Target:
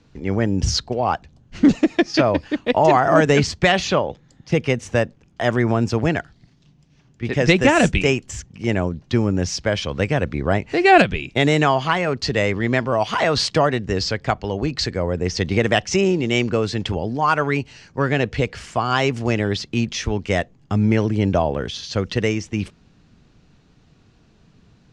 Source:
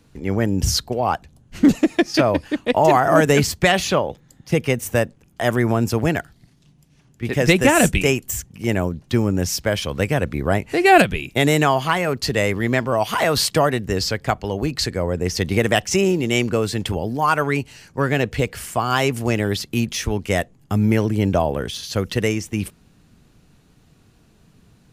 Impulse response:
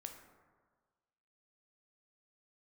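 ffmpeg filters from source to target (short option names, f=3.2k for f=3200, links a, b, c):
-af "lowpass=f=6.3k:w=0.5412,lowpass=f=6.3k:w=1.3066"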